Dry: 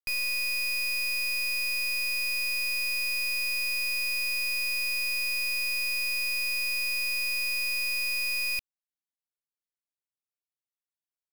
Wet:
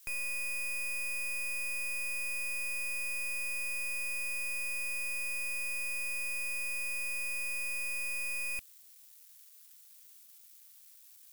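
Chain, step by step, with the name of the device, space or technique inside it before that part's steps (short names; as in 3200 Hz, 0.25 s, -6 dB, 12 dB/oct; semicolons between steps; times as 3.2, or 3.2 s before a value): budget class-D amplifier (switching dead time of 0.12 ms; switching spikes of -38.5 dBFS); gain -3 dB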